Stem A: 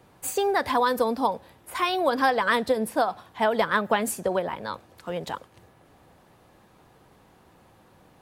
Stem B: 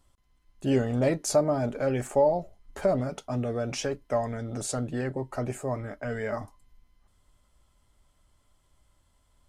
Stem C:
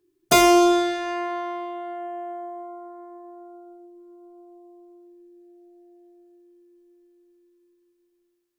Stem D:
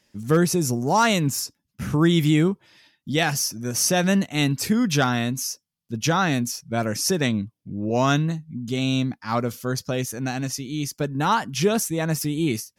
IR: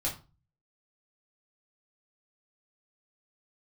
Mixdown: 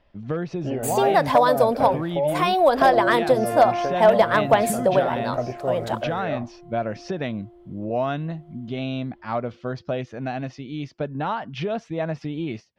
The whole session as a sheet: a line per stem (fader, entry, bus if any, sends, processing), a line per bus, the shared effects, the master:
+1.0 dB, 0.60 s, no bus, no send, gate -51 dBFS, range -20 dB
+1.5 dB, 0.00 s, bus A, no send, none
-1.0 dB, 2.50 s, bus A, no send, low-pass that closes with the level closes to 460 Hz, closed at -16.5 dBFS
-3.0 dB, 0.00 s, bus A, no send, none
bus A: 0.0 dB, low-pass 3.5 kHz 24 dB/octave; compression 6:1, threshold -25 dBFS, peak gain reduction 10.5 dB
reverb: none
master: peaking EQ 650 Hz +9.5 dB 0.62 oct; hard clipper -7 dBFS, distortion -27 dB

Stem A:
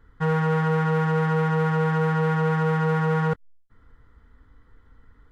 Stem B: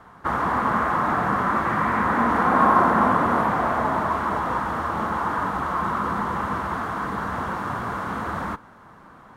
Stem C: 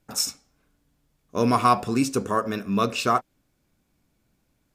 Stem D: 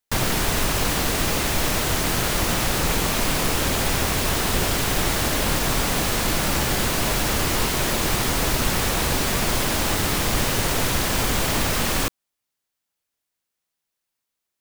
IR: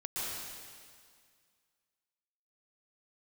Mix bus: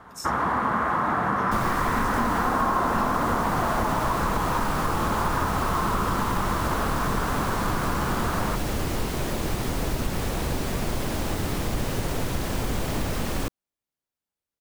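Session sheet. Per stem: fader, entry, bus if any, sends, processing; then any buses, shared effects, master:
mute
+0.5 dB, 0.00 s, no send, none
-13.5 dB, 0.00 s, no send, none
-6.5 dB, 1.40 s, no send, tilt shelf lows +5 dB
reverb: none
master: compression, threshold -20 dBFS, peak gain reduction 8 dB

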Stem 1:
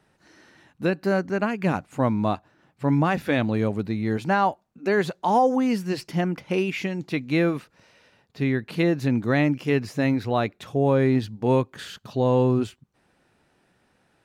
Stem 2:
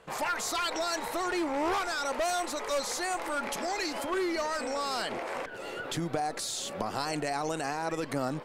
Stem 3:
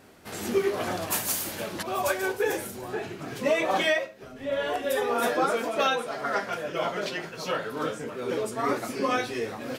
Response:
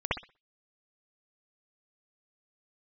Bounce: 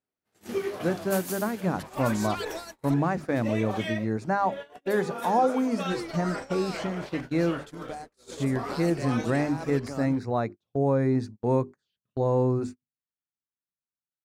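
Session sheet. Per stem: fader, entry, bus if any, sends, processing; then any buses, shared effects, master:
-3.0 dB, 0.00 s, no send, hum notches 50/100/150/200/250/300/350/400 Hz; touch-sensitive phaser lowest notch 540 Hz, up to 3.1 kHz, full sweep at -25 dBFS
-6.0 dB, 1.75 s, muted 2.94–5.89 s, no send, hum 60 Hz, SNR 17 dB
-1.5 dB, 0.00 s, no send, auto duck -8 dB, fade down 1.40 s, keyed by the first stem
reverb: none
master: gate -35 dBFS, range -37 dB

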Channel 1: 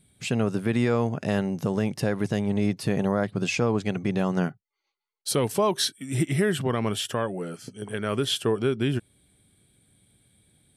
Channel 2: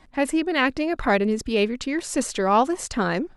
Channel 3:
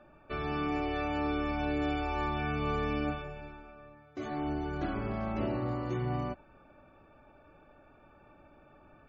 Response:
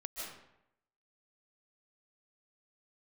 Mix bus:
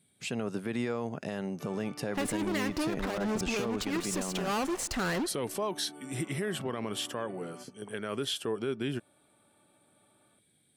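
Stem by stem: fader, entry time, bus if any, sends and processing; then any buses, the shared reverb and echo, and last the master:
-5.0 dB, 0.00 s, no send, Bessel high-pass 190 Hz, order 2
-16.0 dB, 2.00 s, send -18.5 dB, fuzz box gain 31 dB, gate -41 dBFS
-11.0 dB, 1.30 s, send -11.5 dB, high-pass 180 Hz 24 dB/octave; peak limiter -31 dBFS, peak gain reduction 9 dB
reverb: on, RT60 0.80 s, pre-delay 110 ms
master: peak limiter -23 dBFS, peak gain reduction 7.5 dB

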